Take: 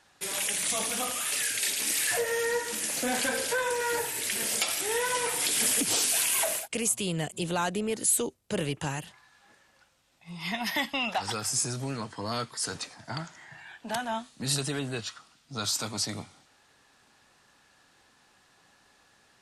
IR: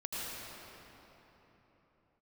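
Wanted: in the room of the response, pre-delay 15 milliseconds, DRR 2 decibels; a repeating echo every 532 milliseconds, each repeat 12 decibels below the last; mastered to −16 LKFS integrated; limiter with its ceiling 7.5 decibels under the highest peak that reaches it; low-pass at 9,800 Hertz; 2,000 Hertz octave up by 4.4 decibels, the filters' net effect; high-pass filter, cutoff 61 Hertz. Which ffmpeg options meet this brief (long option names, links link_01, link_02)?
-filter_complex "[0:a]highpass=61,lowpass=9800,equalizer=frequency=2000:width_type=o:gain=5.5,alimiter=limit=-20dB:level=0:latency=1,aecho=1:1:532|1064|1596:0.251|0.0628|0.0157,asplit=2[link_01][link_02];[1:a]atrim=start_sample=2205,adelay=15[link_03];[link_02][link_03]afir=irnorm=-1:irlink=0,volume=-5.5dB[link_04];[link_01][link_04]amix=inputs=2:normalize=0,volume=12dB"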